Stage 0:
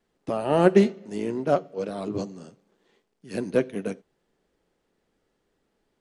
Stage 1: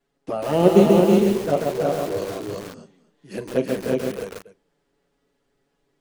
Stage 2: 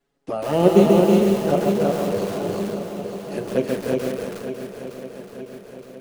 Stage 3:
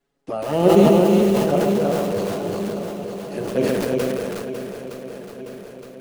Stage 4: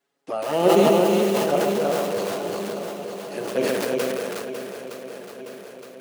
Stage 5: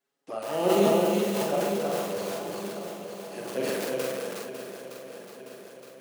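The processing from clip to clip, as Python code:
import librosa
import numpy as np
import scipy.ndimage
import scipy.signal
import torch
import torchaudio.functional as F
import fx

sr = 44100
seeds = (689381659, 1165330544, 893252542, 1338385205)

y1 = fx.env_flanger(x, sr, rest_ms=7.2, full_db=-17.0)
y1 = fx.echo_multitap(y1, sr, ms=(40, 323, 362, 599), db=(-14.0, -4.0, -3.0, -18.0))
y1 = fx.echo_crushed(y1, sr, ms=137, feedback_pct=35, bits=6, wet_db=-3)
y1 = y1 * 10.0 ** (2.5 / 20.0)
y2 = fx.echo_swing(y1, sr, ms=917, ratio=1.5, feedback_pct=52, wet_db=-9.5)
y3 = fx.sustainer(y2, sr, db_per_s=21.0)
y3 = y3 * 10.0 ** (-1.0 / 20.0)
y4 = fx.highpass(y3, sr, hz=570.0, slope=6)
y4 = y4 * 10.0 ** (2.0 / 20.0)
y5 = fx.high_shelf(y4, sr, hz=5800.0, db=4.0)
y5 = fx.doubler(y5, sr, ms=45.0, db=-3)
y5 = y5 * 10.0 ** (-8.0 / 20.0)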